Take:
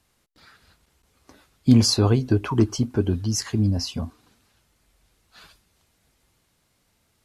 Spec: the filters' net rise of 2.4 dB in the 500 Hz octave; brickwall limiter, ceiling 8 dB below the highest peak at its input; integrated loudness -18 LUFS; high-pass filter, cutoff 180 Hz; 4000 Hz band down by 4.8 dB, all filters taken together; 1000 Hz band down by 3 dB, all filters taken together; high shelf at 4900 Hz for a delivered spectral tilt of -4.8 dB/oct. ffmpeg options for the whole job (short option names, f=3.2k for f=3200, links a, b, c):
-af "highpass=180,equalizer=f=500:t=o:g=4.5,equalizer=f=1k:t=o:g=-5,equalizer=f=4k:t=o:g=-8.5,highshelf=f=4.9k:g=3.5,volume=8.5dB,alimiter=limit=-5.5dB:level=0:latency=1"